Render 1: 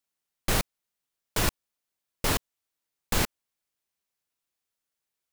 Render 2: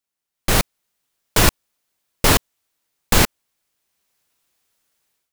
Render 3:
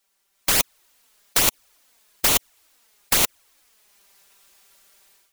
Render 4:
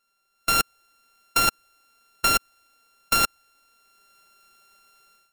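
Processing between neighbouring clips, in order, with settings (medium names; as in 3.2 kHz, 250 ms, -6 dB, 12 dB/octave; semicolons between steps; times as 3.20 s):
level rider gain up to 15.5 dB
peaking EQ 140 Hz -9 dB 2 oct; touch-sensitive flanger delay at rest 5.1 ms, full sweep at -12 dBFS; spectrum-flattening compressor 4:1
sorted samples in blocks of 32 samples; trim -2 dB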